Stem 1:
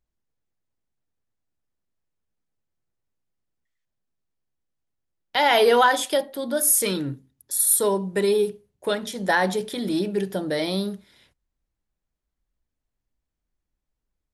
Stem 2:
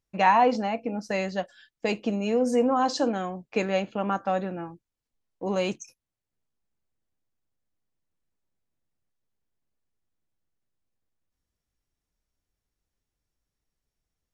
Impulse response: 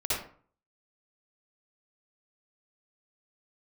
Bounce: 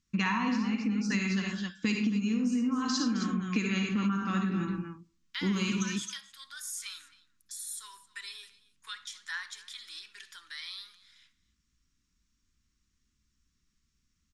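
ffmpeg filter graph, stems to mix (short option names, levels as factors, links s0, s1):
-filter_complex "[0:a]highpass=f=1000:w=0.5412,highpass=f=1000:w=1.3066,acompressor=threshold=0.00708:ratio=1.5,volume=0.473,asplit=3[s0][s1][s2];[s1]volume=0.075[s3];[s2]volume=0.1[s4];[1:a]volume=1.26,asplit=3[s5][s6][s7];[s6]volume=0.422[s8];[s7]volume=0.447[s9];[2:a]atrim=start_sample=2205[s10];[s3][s8]amix=inputs=2:normalize=0[s11];[s11][s10]afir=irnorm=-1:irlink=0[s12];[s4][s9]amix=inputs=2:normalize=0,aecho=0:1:266:1[s13];[s0][s5][s12][s13]amix=inputs=4:normalize=0,firequalizer=gain_entry='entry(130,0);entry(220,8);entry(620,-30);entry(1100,0);entry(6800,6);entry(11000,-11)':delay=0.05:min_phase=1,acompressor=threshold=0.0501:ratio=12"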